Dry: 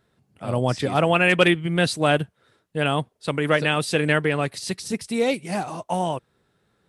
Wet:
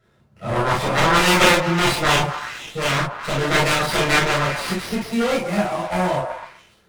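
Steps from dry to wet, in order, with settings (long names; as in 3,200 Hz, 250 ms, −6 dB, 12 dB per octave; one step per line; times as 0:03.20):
harmonic generator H 7 −9 dB, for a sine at −3 dBFS
echo through a band-pass that steps 126 ms, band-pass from 690 Hz, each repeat 0.7 octaves, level −5 dB
convolution reverb, pre-delay 3 ms, DRR −7.5 dB
windowed peak hold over 5 samples
level −10.5 dB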